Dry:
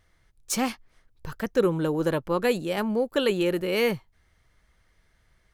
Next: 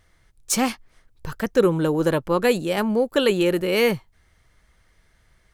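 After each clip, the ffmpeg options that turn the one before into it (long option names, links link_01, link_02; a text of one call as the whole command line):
ffmpeg -i in.wav -af "equalizer=frequency=8400:width=1.5:gain=2.5,volume=4.5dB" out.wav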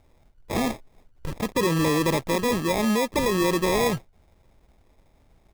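ffmpeg -i in.wav -filter_complex "[0:a]acrossover=split=5700[link_01][link_02];[link_02]adelay=50[link_03];[link_01][link_03]amix=inputs=2:normalize=0,acrusher=samples=30:mix=1:aa=0.000001,alimiter=limit=-17.5dB:level=0:latency=1:release=17,volume=1dB" out.wav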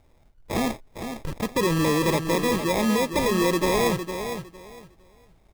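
ffmpeg -i in.wav -af "aecho=1:1:457|914|1371:0.376|0.0789|0.0166" out.wav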